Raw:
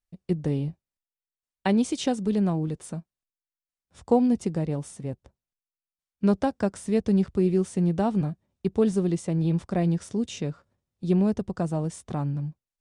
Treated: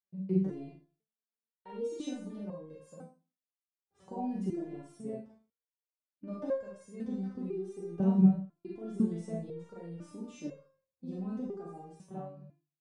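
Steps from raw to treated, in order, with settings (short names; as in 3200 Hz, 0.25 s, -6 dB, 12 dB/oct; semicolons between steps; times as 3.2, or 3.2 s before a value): ending faded out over 1.56 s; HPF 120 Hz 12 dB/oct; limiter -21.5 dBFS, peak gain reduction 13 dB; tilt shelf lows +8.5 dB, about 1500 Hz; Schroeder reverb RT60 0.35 s, combs from 32 ms, DRR -2.5 dB; stepped resonator 2 Hz 190–540 Hz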